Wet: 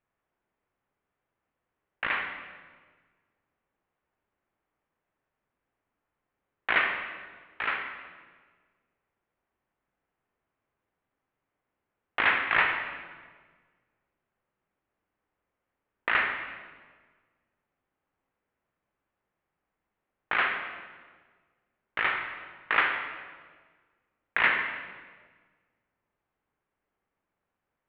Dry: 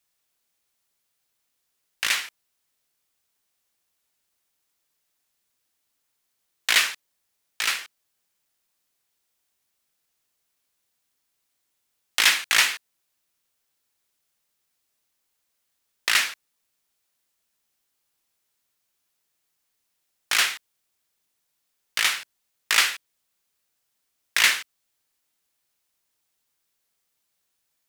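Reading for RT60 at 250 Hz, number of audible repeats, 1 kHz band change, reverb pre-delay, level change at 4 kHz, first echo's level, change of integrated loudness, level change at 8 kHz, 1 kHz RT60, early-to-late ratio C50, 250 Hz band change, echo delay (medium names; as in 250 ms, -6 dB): 1.8 s, no echo, +2.5 dB, 36 ms, -14.5 dB, no echo, -6.0 dB, under -40 dB, 1.4 s, 5.5 dB, +5.5 dB, no echo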